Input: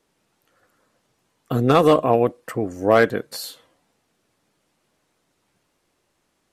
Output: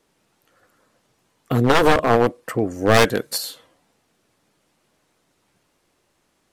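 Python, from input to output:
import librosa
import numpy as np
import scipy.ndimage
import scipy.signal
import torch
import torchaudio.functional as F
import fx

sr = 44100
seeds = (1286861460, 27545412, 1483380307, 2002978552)

y = np.minimum(x, 2.0 * 10.0 ** (-15.0 / 20.0) - x)
y = fx.high_shelf(y, sr, hz=4000.0, db=9.0, at=(2.94, 3.38))
y = F.gain(torch.from_numpy(y), 3.0).numpy()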